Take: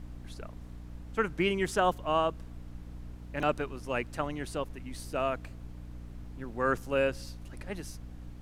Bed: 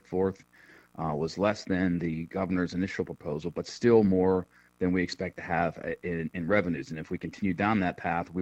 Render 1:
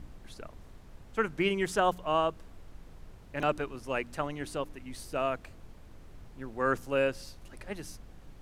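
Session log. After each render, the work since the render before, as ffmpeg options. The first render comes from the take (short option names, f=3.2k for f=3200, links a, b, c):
-af "bandreject=f=60:t=h:w=4,bandreject=f=120:t=h:w=4,bandreject=f=180:t=h:w=4,bandreject=f=240:t=h:w=4,bandreject=f=300:t=h:w=4"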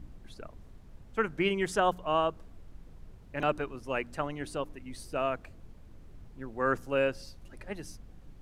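-af "afftdn=nr=6:nf=-52"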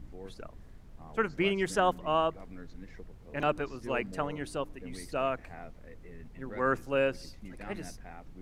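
-filter_complex "[1:a]volume=-19.5dB[a];[0:a][a]amix=inputs=2:normalize=0"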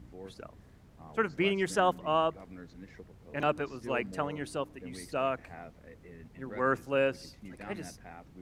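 -af "highpass=67"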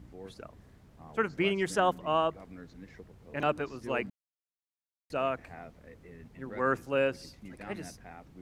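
-filter_complex "[0:a]asplit=3[a][b][c];[a]atrim=end=4.1,asetpts=PTS-STARTPTS,afade=t=out:st=4.096:d=0.004:c=hsin[d];[b]atrim=start=4.1:end=5.1,asetpts=PTS-STARTPTS,volume=0[e];[c]atrim=start=5.1,asetpts=PTS-STARTPTS,afade=t=in:d=0.004:c=hsin[f];[d][e][f]concat=n=3:v=0:a=1"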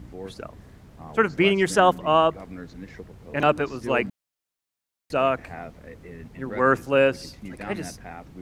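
-af "volume=9dB"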